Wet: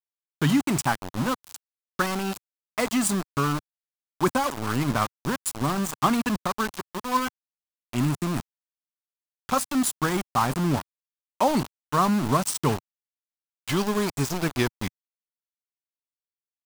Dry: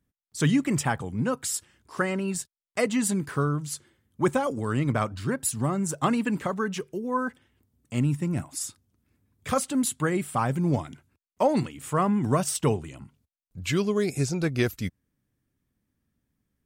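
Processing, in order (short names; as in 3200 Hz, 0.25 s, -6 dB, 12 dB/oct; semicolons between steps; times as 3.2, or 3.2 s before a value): low-pass opened by the level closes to 1200 Hz, open at -21.5 dBFS; sample gate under -27.5 dBFS; graphic EQ 125/500/1000/2000 Hz -4/-7/+4/-4 dB; gain +3.5 dB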